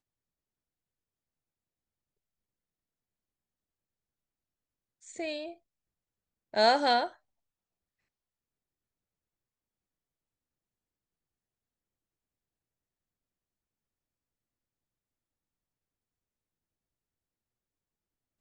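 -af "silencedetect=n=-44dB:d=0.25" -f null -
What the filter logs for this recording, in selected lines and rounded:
silence_start: 0.00
silence_end: 5.06 | silence_duration: 5.06
silence_start: 5.53
silence_end: 6.54 | silence_duration: 1.00
silence_start: 7.11
silence_end: 18.41 | silence_duration: 11.30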